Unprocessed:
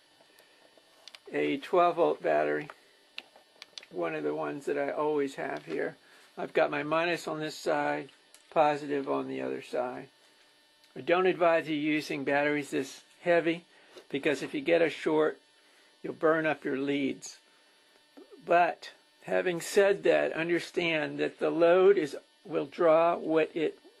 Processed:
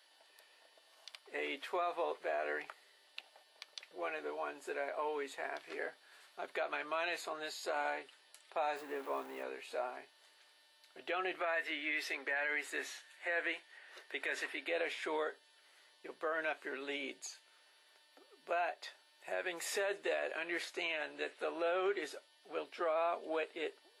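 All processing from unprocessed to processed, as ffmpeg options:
ffmpeg -i in.wav -filter_complex "[0:a]asettb=1/sr,asplit=3[link_01][link_02][link_03];[link_01]atrim=end=8.764[link_04];[link_02]atrim=start=8.76:end=9.43,asetpts=PTS-STARTPTS,afade=type=in:duration=0.004:curve=qsin,afade=type=out:start_time=0.666:duration=0.004:curve=qsin,aeval=exprs='val(0)+0.5*0.0133*sgn(val(0))':channel_layout=same,equalizer=frequency=5500:width=0.54:gain=-11[link_05];[link_03]atrim=start=9.426[link_06];[link_04][link_05]acrossfade=duration=0.004:curve1=hsin:curve2=qsin[link_07];[link_07][link_06]acrossfade=duration=0.004:curve1=qsin:curve2=hsin,asettb=1/sr,asplit=3[link_08][link_09][link_10];[link_08]atrim=end=11.404[link_11];[link_09]atrim=start=11.4:end=14.68,asetpts=PTS-STARTPTS,afade=type=in:duration=0.004:curve=qsin,afade=type=out:start_time=3.276:duration=0.004:curve=qsin,highpass=frequency=250:width=0.5412,highpass=frequency=250:width=1.3066,equalizer=frequency=1800:width_type=o:width=0.62:gain=9.5[link_12];[link_10]atrim=start=14.676[link_13];[link_11][link_12]acrossfade=duration=0.004:curve1=hsin:curve2=qsin[link_14];[link_14][link_13]acrossfade=duration=0.004:curve1=qsin:curve2=hsin,highpass=640,alimiter=limit=-23.5dB:level=0:latency=1:release=68,volume=-3.5dB" out.wav

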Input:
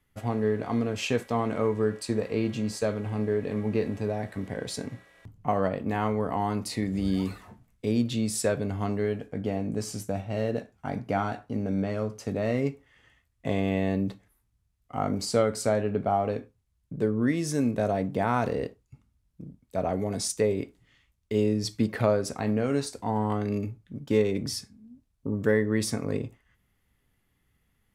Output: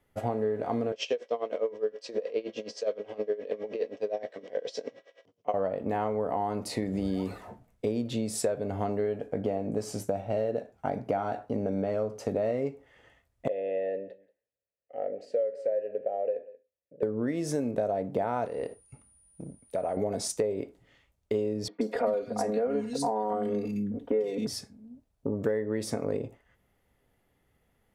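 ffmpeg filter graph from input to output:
ffmpeg -i in.wav -filter_complex "[0:a]asettb=1/sr,asplit=3[link_01][link_02][link_03];[link_01]atrim=end=0.924[link_04];[link_02]atrim=start=0.92:end=5.54,asetpts=PTS-STARTPTS,afade=type=in:duration=0.004:curve=qsin,afade=type=out:start_time=4.616:duration=0.004:curve=qsin,highpass=410,equalizer=frequency=490:width_type=q:width=4:gain=6,equalizer=frequency=840:width_type=q:width=4:gain=-9,equalizer=frequency=1400:width_type=q:width=4:gain=-6,equalizer=frequency=3100:width_type=q:width=4:gain=8,equalizer=frequency=5500:width_type=q:width=4:gain=9,lowpass=frequency=6500:width=0.5412,lowpass=frequency=6500:width=1.3066,aeval=exprs='val(0)*pow(10,-19*(0.5-0.5*cos(2*PI*9.6*n/s))/20)':channel_layout=same[link_05];[link_03]atrim=start=5.536[link_06];[link_04][link_05]acrossfade=duration=0.004:curve1=hsin:curve2=qsin[link_07];[link_07][link_06]acrossfade=duration=0.004:curve1=qsin:curve2=hsin,asettb=1/sr,asplit=3[link_08][link_09][link_10];[link_08]atrim=end=13.484[link_11];[link_09]atrim=start=13.48:end=17.03,asetpts=PTS-STARTPTS,afade=type=in:duration=0.004:curve=qsin,afade=type=out:start_time=3.546:duration=0.004:curve=qsin,asplit=3[link_12][link_13][link_14];[link_12]bandpass=frequency=530:width_type=q:width=8,volume=0dB[link_15];[link_13]bandpass=frequency=1840:width_type=q:width=8,volume=-6dB[link_16];[link_14]bandpass=frequency=2480:width_type=q:width=8,volume=-9dB[link_17];[link_15][link_16][link_17]amix=inputs=3:normalize=0,bandreject=frequency=1400:width=17,aecho=1:1:182:0.0794,atrim=end_sample=156555[link_18];[link_10]atrim=start=17.026[link_19];[link_11][link_18]acrossfade=duration=0.004:curve1=hsin:curve2=qsin[link_20];[link_20][link_19]acrossfade=duration=0.004:curve1=qsin:curve2=hsin,asettb=1/sr,asplit=3[link_21][link_22][link_23];[link_21]atrim=end=18.454[link_24];[link_22]atrim=start=18.45:end=19.97,asetpts=PTS-STARTPTS,afade=type=in:duration=0.004:curve=qsin,afade=type=out:start_time=1.516:duration=0.004:curve=qsin,equalizer=frequency=2100:width=0.44:gain=6,acompressor=threshold=-36dB:ratio=3:attack=3.2:release=140:knee=1:detection=peak,aeval=exprs='val(0)+0.00126*sin(2*PI*9500*n/s)':channel_layout=same[link_25];[link_23]atrim=start=19.966[link_26];[link_24][link_25]acrossfade=duration=0.004:curve1=hsin:curve2=qsin[link_27];[link_27][link_26]acrossfade=duration=0.004:curve1=qsin:curve2=hsin,asettb=1/sr,asplit=3[link_28][link_29][link_30];[link_28]atrim=end=21.684[link_31];[link_29]atrim=start=21.68:end=24.47,asetpts=PTS-STARTPTS,afade=type=in:duration=0.004:curve=qsin,afade=type=out:start_time=2.786:duration=0.004:curve=qsin,aecho=1:1:4.2:0.95,atrim=end_sample=123039,acrossover=split=230|2200[link_32][link_33][link_34];[link_34]adelay=130[link_35];[link_32]adelay=270[link_36];[link_36][link_33][link_35]amix=inputs=3:normalize=0,atrim=end_sample=123039[link_37];[link_30]atrim=start=24.466[link_38];[link_31][link_37]acrossfade=duration=0.004:curve1=hsin:curve2=qsin[link_39];[link_39][link_38]acrossfade=duration=0.004:curve1=qsin:curve2=hsin,equalizer=frequency=580:width=0.84:gain=12.5,bandreject=frequency=1100:width=18,acompressor=threshold=-24dB:ratio=6,volume=-2dB" out.wav

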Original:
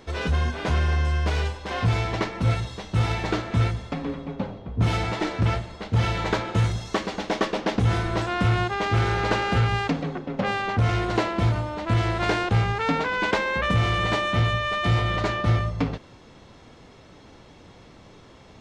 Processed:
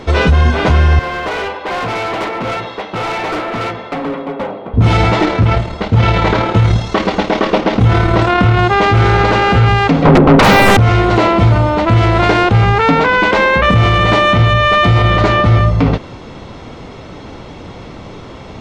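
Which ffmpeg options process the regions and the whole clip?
ffmpeg -i in.wav -filter_complex "[0:a]asettb=1/sr,asplit=3[link_01][link_02][link_03];[link_01]atrim=end=0.994[link_04];[link_02]atrim=start=0.99:end=4.74,asetpts=PTS-STARTPTS,afade=type=in:duration=0.004:curve=qsin,afade=type=out:start_time=3.746:duration=0.004:curve=qsin,highpass=370,lowpass=2800,volume=34dB,asoftclip=hard,volume=-34dB[link_05];[link_03]atrim=start=4.736[link_06];[link_04][link_05]acrossfade=duration=0.004:curve1=hsin:curve2=qsin[link_07];[link_07][link_06]acrossfade=duration=0.004:curve1=qsin:curve2=hsin,asettb=1/sr,asplit=3[link_08][link_09][link_10];[link_08]atrim=end=5.254[link_11];[link_09]atrim=start=5.25:end=8.59,asetpts=PTS-STARTPTS,afade=type=in:duration=0.004:curve=qsin,afade=type=out:start_time=3.336:duration=0.004:curve=qsin,acrossover=split=5400[link_12][link_13];[link_13]acompressor=threshold=-52dB:ratio=4:attack=1:release=60[link_14];[link_12][link_14]amix=inputs=2:normalize=0,tremolo=f=37:d=0.4[link_15];[link_10]atrim=start=8.586[link_16];[link_11][link_15]acrossfade=duration=0.004:curve1=hsin:curve2=qsin[link_17];[link_17][link_16]acrossfade=duration=0.004:curve1=qsin:curve2=hsin,asettb=1/sr,asplit=3[link_18][link_19][link_20];[link_18]atrim=end=10.054[link_21];[link_19]atrim=start=10.05:end=10.77,asetpts=PTS-STARTPTS,afade=type=in:duration=0.004:curve=qsin,afade=type=out:start_time=0.716:duration=0.004:curve=qsin,adynamicsmooth=sensitivity=3.5:basefreq=790,aeval=exprs='0.266*sin(PI/2*7.94*val(0)/0.266)':channel_layout=same[link_22];[link_20]atrim=start=10.766[link_23];[link_21][link_22]acrossfade=duration=0.004:curve1=hsin:curve2=qsin[link_24];[link_24][link_23]acrossfade=duration=0.004:curve1=qsin:curve2=hsin,lowpass=frequency=3200:poles=1,bandreject=frequency=1700:width=14,alimiter=level_in=19dB:limit=-1dB:release=50:level=0:latency=1,volume=-1dB" out.wav

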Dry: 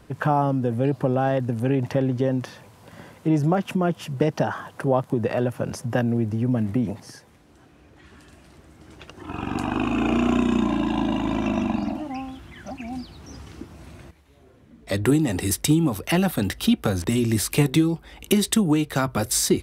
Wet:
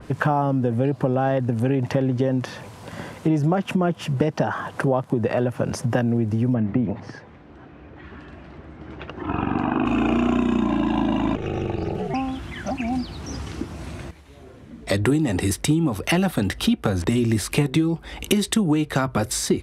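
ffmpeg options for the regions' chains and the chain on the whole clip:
ffmpeg -i in.wav -filter_complex "[0:a]asettb=1/sr,asplit=3[link_01][link_02][link_03];[link_01]atrim=end=6.544[link_04];[link_02]atrim=start=6.54:end=9.86,asetpts=PTS-STARTPTS,afade=type=in:duration=0.004:curve=qsin,afade=type=out:start_time=3.316:duration=0.004:curve=qsin,lowpass=2300,bandreject=frequency=50:width_type=h:width=6,bandreject=frequency=100:width_type=h:width=6[link_05];[link_03]atrim=start=9.856[link_06];[link_04][link_05]acrossfade=duration=0.004:curve1=hsin:curve2=qsin[link_07];[link_07][link_06]acrossfade=duration=0.004:curve1=qsin:curve2=hsin,asettb=1/sr,asplit=3[link_08][link_09][link_10];[link_08]atrim=end=11.354[link_11];[link_09]atrim=start=11.35:end=12.14,asetpts=PTS-STARTPTS,afade=type=in:duration=0.004:curve=qsin,afade=type=out:start_time=0.786:duration=0.004:curve=qsin,acompressor=threshold=-27dB:ratio=3:attack=3.2:release=140:knee=1:detection=peak,aeval=exprs='val(0)*sin(2*PI*120*n/s)':channel_layout=same,asuperstop=centerf=1000:order=4:qfactor=3.3[link_12];[link_10]atrim=start=12.136[link_13];[link_11][link_12]acrossfade=duration=0.004:curve1=hsin:curve2=qsin[link_14];[link_14][link_13]acrossfade=duration=0.004:curve1=qsin:curve2=hsin,lowpass=11000,acompressor=threshold=-30dB:ratio=2.5,adynamicequalizer=threshold=0.00355:dfrequency=3100:dqfactor=0.7:tfrequency=3100:tqfactor=0.7:attack=5:release=100:ratio=0.375:range=3:mode=cutabove:tftype=highshelf,volume=9dB" out.wav

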